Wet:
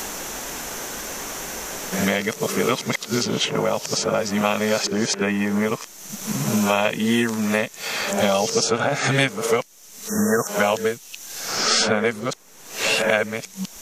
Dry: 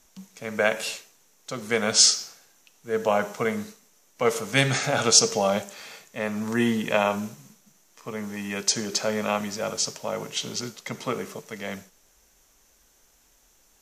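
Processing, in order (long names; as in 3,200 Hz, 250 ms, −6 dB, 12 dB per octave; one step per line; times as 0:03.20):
played backwards from end to start
time-frequency box erased 0:10.08–0:10.48, 1,900–5,400 Hz
multiband upward and downward compressor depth 100%
level +4.5 dB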